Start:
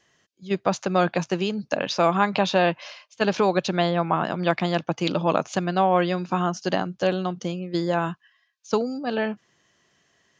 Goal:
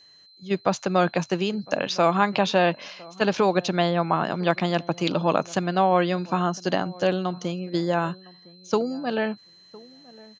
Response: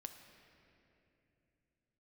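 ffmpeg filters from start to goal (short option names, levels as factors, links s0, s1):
-filter_complex "[0:a]aeval=exprs='val(0)+0.00282*sin(2*PI*4100*n/s)':c=same,asplit=2[s0][s1];[s1]adelay=1008,lowpass=f=930:p=1,volume=0.0841,asplit=2[s2][s3];[s3]adelay=1008,lowpass=f=930:p=1,volume=0.16[s4];[s0][s2][s4]amix=inputs=3:normalize=0"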